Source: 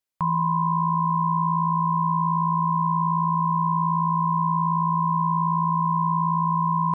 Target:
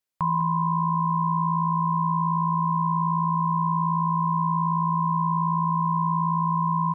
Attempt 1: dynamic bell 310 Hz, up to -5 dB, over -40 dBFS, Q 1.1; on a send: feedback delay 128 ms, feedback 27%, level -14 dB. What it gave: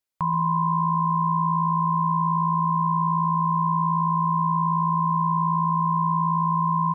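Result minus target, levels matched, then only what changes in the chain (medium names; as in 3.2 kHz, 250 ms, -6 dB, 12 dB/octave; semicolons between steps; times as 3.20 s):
echo 73 ms early
change: feedback delay 201 ms, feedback 27%, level -14 dB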